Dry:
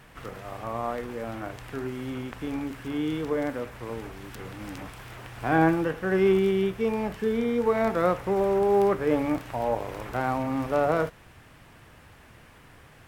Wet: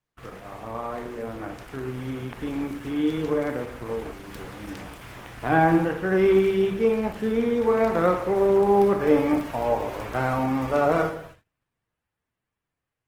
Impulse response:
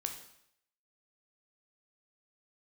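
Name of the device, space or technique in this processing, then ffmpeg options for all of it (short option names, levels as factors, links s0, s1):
speakerphone in a meeting room: -filter_complex "[1:a]atrim=start_sample=2205[s0];[0:a][s0]afir=irnorm=-1:irlink=0,dynaudnorm=f=210:g=17:m=1.5,agate=range=0.0224:threshold=0.00708:ratio=16:detection=peak" -ar 48000 -c:a libopus -b:a 16k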